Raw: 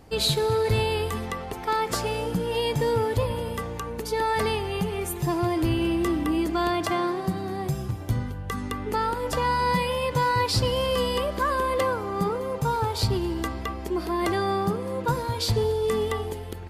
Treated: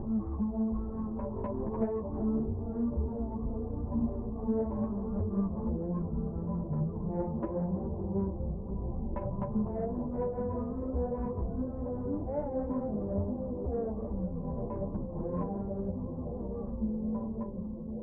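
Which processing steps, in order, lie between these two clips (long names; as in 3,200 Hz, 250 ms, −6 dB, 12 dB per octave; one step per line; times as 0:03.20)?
fade-out on the ending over 5.20 s
in parallel at +2 dB: upward compression, threshold −26 dBFS
on the sum: Chebyshev low-pass filter 2,200 Hz, order 6
downward compressor 8 to 1, threshold −26 dBFS, peak gain reduction 13.5 dB
time stretch by overlap-add 0.54×, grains 200 ms
soft clipping −21 dBFS, distortion −23 dB
bucket-brigade delay 422 ms, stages 4,096, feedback 83%, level −10 dB
wrong playback speed 15 ips tape played at 7.5 ips
string-ensemble chorus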